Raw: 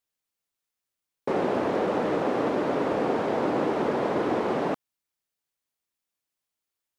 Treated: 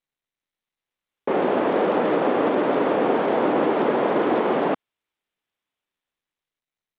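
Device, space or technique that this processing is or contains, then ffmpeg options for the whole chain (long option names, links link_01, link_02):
Bluetooth headset: -af "highpass=190,dynaudnorm=framelen=200:gausssize=11:maxgain=5.5dB,aresample=8000,aresample=44100" -ar 32000 -c:a sbc -b:a 64k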